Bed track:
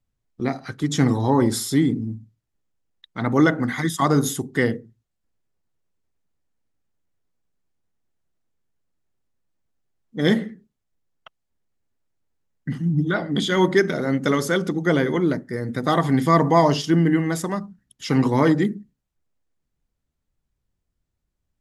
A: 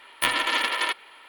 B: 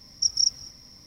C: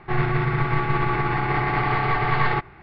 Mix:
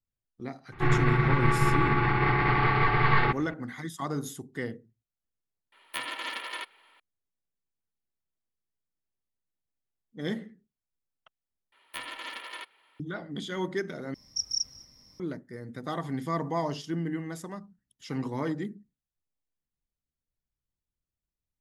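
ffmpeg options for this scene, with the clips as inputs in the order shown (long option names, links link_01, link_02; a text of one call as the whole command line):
ffmpeg -i bed.wav -i cue0.wav -i cue1.wav -i cue2.wav -filter_complex "[1:a]asplit=2[link_01][link_02];[0:a]volume=-14dB[link_03];[3:a]equalizer=frequency=690:width=3.1:gain=-7[link_04];[link_01]highpass=110[link_05];[link_03]asplit=3[link_06][link_07][link_08];[link_06]atrim=end=11.724[link_09];[link_02]atrim=end=1.28,asetpts=PTS-STARTPTS,volume=-15.5dB[link_10];[link_07]atrim=start=12.996:end=14.144[link_11];[2:a]atrim=end=1.06,asetpts=PTS-STARTPTS,volume=-8dB[link_12];[link_08]atrim=start=15.196[link_13];[link_04]atrim=end=2.82,asetpts=PTS-STARTPTS,volume=-1dB,afade=type=in:duration=0.004:curve=hsin,afade=type=out:start_time=2.816:duration=0.004:curve=hsin,adelay=720[link_14];[link_05]atrim=end=1.28,asetpts=PTS-STARTPTS,volume=-11.5dB,afade=type=in:duration=0.004:curve=hsin,afade=type=out:start_time=1.276:duration=0.004:curve=hsin,adelay=5720[link_15];[link_09][link_10]acrossfade=duration=0.004:curve1=hsin:curve2=hsin[link_16];[link_16][link_11]acrossfade=duration=0.004:curve1=hsin:curve2=hsin[link_17];[link_17][link_12]acrossfade=duration=0.004:curve1=hsin:curve2=hsin[link_18];[link_18][link_13]acrossfade=duration=0.004:curve1=hsin:curve2=hsin[link_19];[link_19][link_14][link_15]amix=inputs=3:normalize=0" out.wav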